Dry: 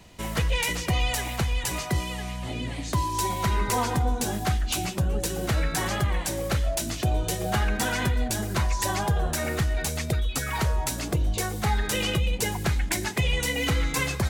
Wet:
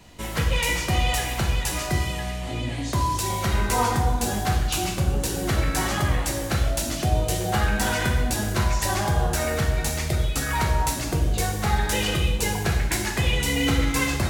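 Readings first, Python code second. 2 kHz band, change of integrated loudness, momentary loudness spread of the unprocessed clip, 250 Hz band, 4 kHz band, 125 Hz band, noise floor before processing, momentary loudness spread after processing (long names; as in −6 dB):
+3.0 dB, +2.5 dB, 3 LU, +3.0 dB, +2.5 dB, +2.5 dB, −34 dBFS, 3 LU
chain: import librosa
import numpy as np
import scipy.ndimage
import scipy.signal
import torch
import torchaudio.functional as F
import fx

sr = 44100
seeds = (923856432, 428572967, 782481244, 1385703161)

y = fx.rev_plate(x, sr, seeds[0], rt60_s=1.1, hf_ratio=0.85, predelay_ms=0, drr_db=0.5)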